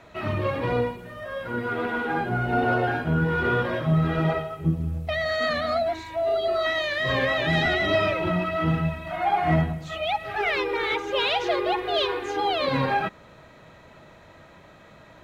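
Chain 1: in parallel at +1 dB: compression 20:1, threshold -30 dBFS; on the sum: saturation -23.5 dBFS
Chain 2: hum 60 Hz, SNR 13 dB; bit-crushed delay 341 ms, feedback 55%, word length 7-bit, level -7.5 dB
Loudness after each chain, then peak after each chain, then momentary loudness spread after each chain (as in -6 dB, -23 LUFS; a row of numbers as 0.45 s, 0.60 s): -27.0 LUFS, -24.5 LUFS; -23.5 dBFS, -10.0 dBFS; 18 LU, 12 LU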